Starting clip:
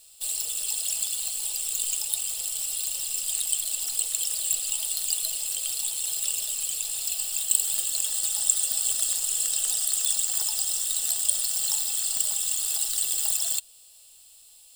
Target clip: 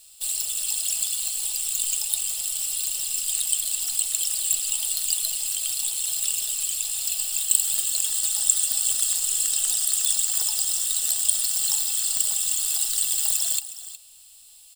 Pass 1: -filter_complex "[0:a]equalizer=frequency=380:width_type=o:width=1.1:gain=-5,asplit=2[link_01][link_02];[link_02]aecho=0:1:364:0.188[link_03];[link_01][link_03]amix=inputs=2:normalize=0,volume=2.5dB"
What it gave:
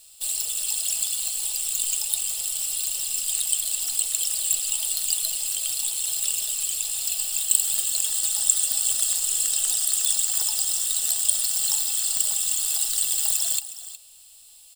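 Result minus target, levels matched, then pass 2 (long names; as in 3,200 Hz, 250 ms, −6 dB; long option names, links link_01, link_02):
500 Hz band +3.5 dB
-filter_complex "[0:a]equalizer=frequency=380:width_type=o:width=1.1:gain=-12.5,asplit=2[link_01][link_02];[link_02]aecho=0:1:364:0.188[link_03];[link_01][link_03]amix=inputs=2:normalize=0,volume=2.5dB"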